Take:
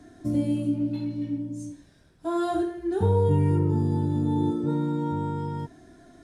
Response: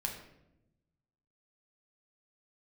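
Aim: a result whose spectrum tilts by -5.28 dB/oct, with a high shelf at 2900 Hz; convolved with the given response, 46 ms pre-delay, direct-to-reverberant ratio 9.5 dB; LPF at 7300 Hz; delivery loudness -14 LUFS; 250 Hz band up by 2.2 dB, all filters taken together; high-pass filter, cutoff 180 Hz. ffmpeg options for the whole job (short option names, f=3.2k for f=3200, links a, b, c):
-filter_complex "[0:a]highpass=180,lowpass=7.3k,equalizer=f=250:t=o:g=4,highshelf=f=2.9k:g=-5,asplit=2[a][b];[1:a]atrim=start_sample=2205,adelay=46[c];[b][c]afir=irnorm=-1:irlink=0,volume=-11dB[d];[a][d]amix=inputs=2:normalize=0,volume=12dB"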